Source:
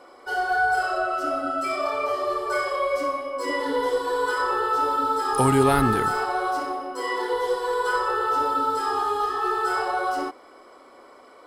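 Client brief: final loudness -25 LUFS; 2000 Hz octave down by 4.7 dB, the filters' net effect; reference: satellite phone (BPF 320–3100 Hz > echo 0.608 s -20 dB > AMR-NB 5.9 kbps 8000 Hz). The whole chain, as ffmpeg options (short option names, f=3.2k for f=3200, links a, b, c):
-af "highpass=320,lowpass=3.1k,equalizer=f=2k:t=o:g=-7,aecho=1:1:608:0.1,volume=3dB" -ar 8000 -c:a libopencore_amrnb -b:a 5900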